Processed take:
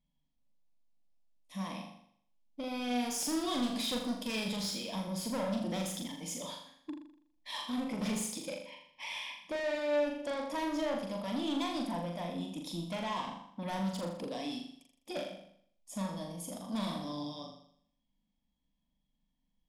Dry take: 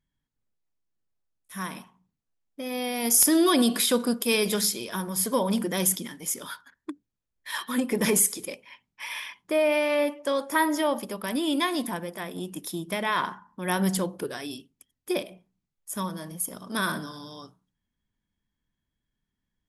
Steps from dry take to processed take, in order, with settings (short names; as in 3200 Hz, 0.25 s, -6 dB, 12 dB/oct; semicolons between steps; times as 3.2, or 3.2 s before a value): LPF 4400 Hz 12 dB/oct; bell 1700 Hz -3 dB; in parallel at +1 dB: compressor, threshold -34 dBFS, peak gain reduction 15 dB; on the sum: fixed phaser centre 390 Hz, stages 6; soft clip -27.5 dBFS, distortion -8 dB; flutter echo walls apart 7 m, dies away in 0.63 s; gain -5 dB